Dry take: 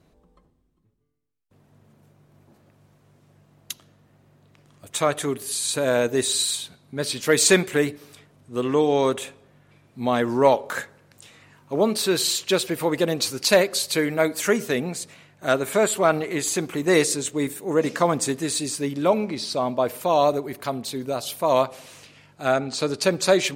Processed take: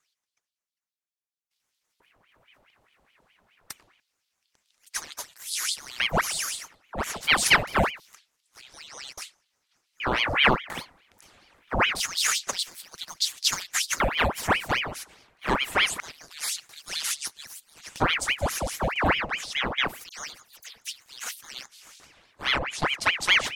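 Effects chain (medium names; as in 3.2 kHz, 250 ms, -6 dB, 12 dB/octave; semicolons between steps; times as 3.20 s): LFO high-pass square 0.25 Hz 290–4000 Hz; 20.09–20.90 s: phase dispersion lows, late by 87 ms, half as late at 2.6 kHz; ring modulator with a swept carrier 1.5 kHz, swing 85%, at 4.8 Hz; trim -3.5 dB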